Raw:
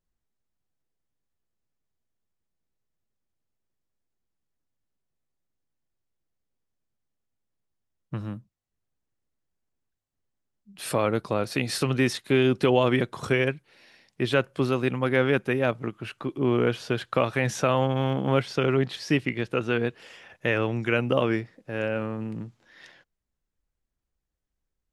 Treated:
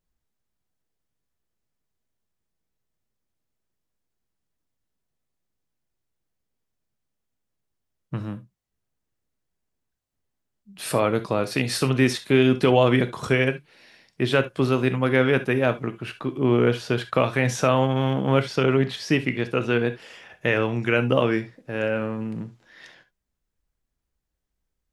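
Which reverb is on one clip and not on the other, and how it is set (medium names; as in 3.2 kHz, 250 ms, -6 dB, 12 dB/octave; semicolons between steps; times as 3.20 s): gated-style reverb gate 90 ms flat, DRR 10 dB; trim +2.5 dB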